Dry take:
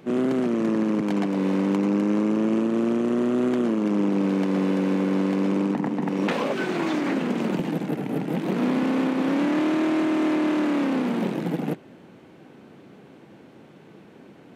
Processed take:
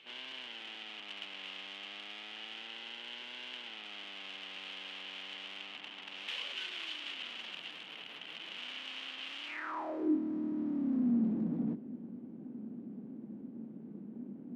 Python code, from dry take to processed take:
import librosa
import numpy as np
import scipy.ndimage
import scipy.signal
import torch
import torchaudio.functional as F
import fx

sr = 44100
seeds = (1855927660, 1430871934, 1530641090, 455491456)

y = fx.tube_stage(x, sr, drive_db=38.0, bias=0.7)
y = fx.filter_sweep_bandpass(y, sr, from_hz=3000.0, to_hz=230.0, start_s=9.45, end_s=10.2, q=5.9)
y = y * librosa.db_to_amplitude(14.0)